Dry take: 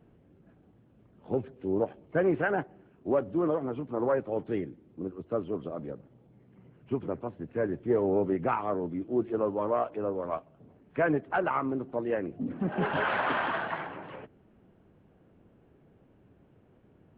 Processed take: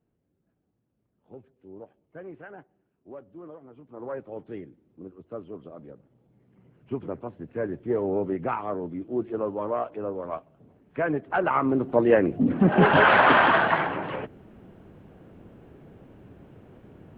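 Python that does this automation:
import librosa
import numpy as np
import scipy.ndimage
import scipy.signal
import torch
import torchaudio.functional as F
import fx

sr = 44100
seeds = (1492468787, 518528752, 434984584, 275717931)

y = fx.gain(x, sr, db=fx.line((3.7, -16.0), (4.17, -6.5), (5.91, -6.5), (6.99, 0.0), (11.12, 0.0), (12.0, 11.5)))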